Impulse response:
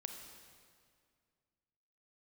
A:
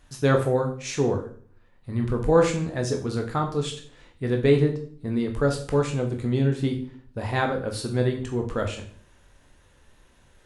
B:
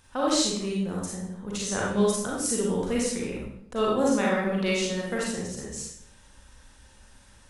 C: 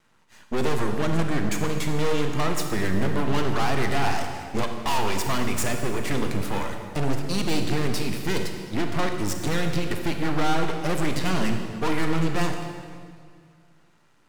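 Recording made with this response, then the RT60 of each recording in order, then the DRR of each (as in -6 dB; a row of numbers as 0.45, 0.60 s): C; 0.50, 0.65, 2.1 s; 3.0, -4.5, 4.0 dB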